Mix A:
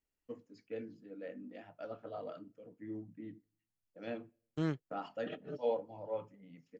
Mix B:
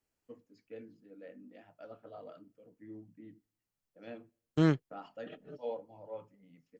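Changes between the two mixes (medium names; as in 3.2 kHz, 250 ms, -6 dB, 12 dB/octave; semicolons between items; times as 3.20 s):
first voice -5.0 dB; second voice +8.5 dB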